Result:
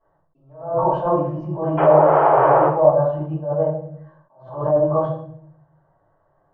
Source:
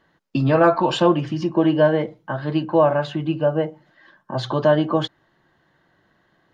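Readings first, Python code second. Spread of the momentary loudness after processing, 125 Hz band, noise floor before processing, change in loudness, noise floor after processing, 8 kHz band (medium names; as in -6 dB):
15 LU, -1.0 dB, -64 dBFS, +2.5 dB, -64 dBFS, no reading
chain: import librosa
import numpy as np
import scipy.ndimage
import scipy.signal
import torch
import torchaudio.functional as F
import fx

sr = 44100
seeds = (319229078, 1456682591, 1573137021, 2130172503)

y = fx.spec_paint(x, sr, seeds[0], shape='noise', start_s=1.77, length_s=0.88, low_hz=300.0, high_hz=3300.0, level_db=-11.0)
y = fx.curve_eq(y, sr, hz=(150.0, 220.0, 620.0, 1100.0, 2100.0, 4500.0, 8400.0), db=(0, -17, 5, 1, -20, -27, -22))
y = fx.env_lowpass_down(y, sr, base_hz=880.0, full_db=-9.0)
y = fx.high_shelf(y, sr, hz=5800.0, db=-5.5)
y = fx.hum_notches(y, sr, base_hz=60, count=2)
y = fx.room_shoebox(y, sr, seeds[1], volume_m3=100.0, walls='mixed', distance_m=3.1)
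y = fx.attack_slew(y, sr, db_per_s=110.0)
y = y * 10.0 ** (-11.5 / 20.0)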